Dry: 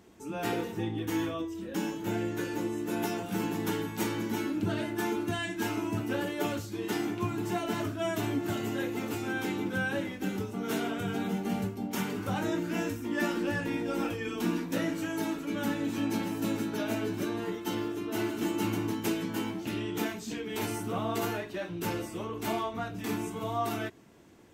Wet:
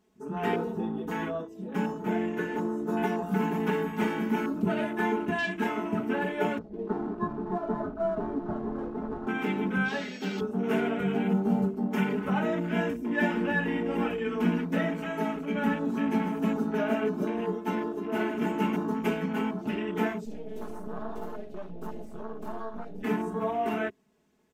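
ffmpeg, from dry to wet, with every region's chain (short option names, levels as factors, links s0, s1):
-filter_complex "[0:a]asettb=1/sr,asplit=3[s0][s1][s2];[s0]atrim=end=3.224[s3];[s1]atrim=start=3.22:end=5,asetpts=PTS-STARTPTS,afade=t=in:d=0.004:c=qsin,afade=t=out:st=1.776:d=0.004:c=qsin,highshelf=f=8300:g=9.5,acrossover=split=6000[s4][s5];[s5]acompressor=threshold=0.00794:ratio=4:attack=1:release=60[s6];[s4][s6]amix=inputs=2:normalize=0[s7];[s2]atrim=start=4.996[s8];[s3][s7]acrossfade=d=0.004:c1=hsin:c2=qsin[s9];[s9][s8]acrossfade=d=0.004:c1=qsin:c2=hsin,asettb=1/sr,asplit=3[s10][s11][s12];[s10]atrim=end=6.584[s13];[s11]atrim=start=6.58:end=9.27,asetpts=PTS-STARTPTS,afade=t=in:d=0.004:c=qsin,afade=t=out:st=2.686:d=0.004:c=qsin,lowpass=1300,aeval=exprs='sgn(val(0))*max(abs(val(0))-0.00501,0)':c=same,asubboost=boost=6:cutoff=87[s14];[s12]atrim=start=9.266[s15];[s13][s14]acrossfade=d=0.004:c1=hsin:c2=qsin[s16];[s16][s15]acrossfade=d=0.004:c1=qsin:c2=hsin,asettb=1/sr,asplit=3[s17][s18][s19];[s17]atrim=end=9.884[s20];[s18]atrim=start=9.88:end=10.42,asetpts=PTS-STARTPTS,afade=t=in:d=0.004:c=qsin,afade=t=out:st=0.536:d=0.004:c=qsin,highpass=f=340:p=1,aeval=exprs='val(0)+0.0112*sin(2*PI*3300*n/s)':c=same[s21];[s19]atrim=start=10.416[s22];[s20][s21]acrossfade=d=0.004:c1=hsin:c2=qsin[s23];[s23][s22]acrossfade=d=0.004:c1=qsin:c2=hsin,asettb=1/sr,asplit=3[s24][s25][s26];[s24]atrim=end=20.254[s27];[s25]atrim=start=20.25:end=23.03,asetpts=PTS-STARTPTS,afade=t=in:d=0.004:c=qsin,afade=t=out:st=2.776:d=0.004:c=qsin,acompressor=threshold=0.0141:ratio=2:attack=3.2:release=140:knee=1:detection=peak,aeval=exprs='max(val(0),0)':c=same[s28];[s26]atrim=start=23.026[s29];[s27][s28]acrossfade=d=0.004:c1=hsin:c2=qsin[s30];[s30][s29]acrossfade=d=0.004:c1=qsin:c2=hsin,afwtdn=0.00794,aecho=1:1:4.7:0.98,volume=1.19"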